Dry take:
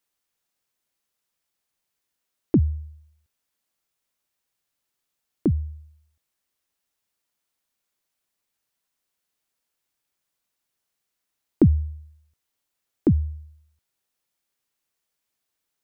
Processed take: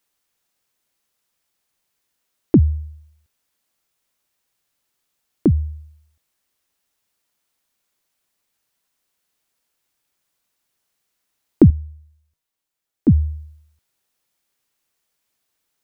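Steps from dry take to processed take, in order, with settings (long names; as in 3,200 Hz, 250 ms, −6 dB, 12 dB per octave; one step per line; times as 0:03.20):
0:11.70–0:13.08: tuned comb filter 160 Hz, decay 0.48 s, harmonics all, mix 70%
level +6 dB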